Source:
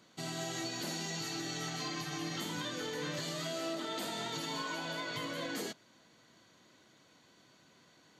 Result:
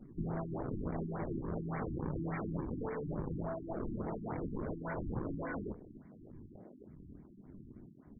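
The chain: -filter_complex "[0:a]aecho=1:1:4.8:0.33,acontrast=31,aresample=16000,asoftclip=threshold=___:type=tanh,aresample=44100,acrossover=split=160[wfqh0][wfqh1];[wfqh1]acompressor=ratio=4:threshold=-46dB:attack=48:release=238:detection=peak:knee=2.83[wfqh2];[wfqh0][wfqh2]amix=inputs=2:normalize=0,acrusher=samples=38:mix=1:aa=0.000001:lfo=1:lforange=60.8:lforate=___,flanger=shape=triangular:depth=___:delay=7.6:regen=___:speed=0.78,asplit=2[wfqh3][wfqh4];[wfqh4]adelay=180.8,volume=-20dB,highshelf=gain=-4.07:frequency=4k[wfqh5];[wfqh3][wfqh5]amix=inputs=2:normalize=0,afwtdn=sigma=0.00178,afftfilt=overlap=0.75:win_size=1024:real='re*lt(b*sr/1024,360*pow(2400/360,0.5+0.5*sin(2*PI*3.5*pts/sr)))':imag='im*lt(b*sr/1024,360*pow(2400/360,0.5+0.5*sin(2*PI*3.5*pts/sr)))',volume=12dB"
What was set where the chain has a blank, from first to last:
-39dB, 1.6, 8.3, -76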